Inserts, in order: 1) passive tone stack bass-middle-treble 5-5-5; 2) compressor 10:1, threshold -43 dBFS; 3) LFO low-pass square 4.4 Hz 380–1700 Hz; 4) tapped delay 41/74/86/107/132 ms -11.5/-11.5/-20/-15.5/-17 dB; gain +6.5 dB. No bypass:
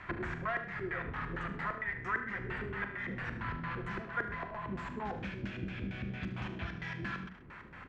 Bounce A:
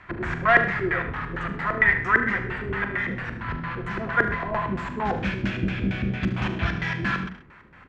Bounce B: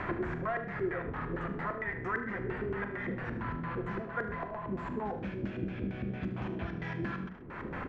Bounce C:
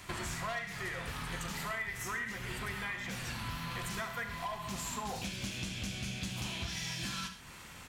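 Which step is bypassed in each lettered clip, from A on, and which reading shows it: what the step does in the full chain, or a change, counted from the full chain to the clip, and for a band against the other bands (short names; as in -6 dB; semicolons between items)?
2, mean gain reduction 11.0 dB; 1, 4 kHz band -7.5 dB; 3, 4 kHz band +14.0 dB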